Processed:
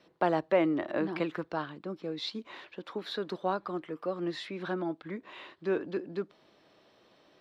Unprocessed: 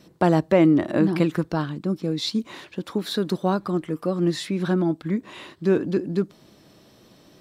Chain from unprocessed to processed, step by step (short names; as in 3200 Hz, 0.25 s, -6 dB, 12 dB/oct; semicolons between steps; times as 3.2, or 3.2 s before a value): three-band isolator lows -14 dB, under 380 Hz, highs -20 dB, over 4300 Hz; gain -5 dB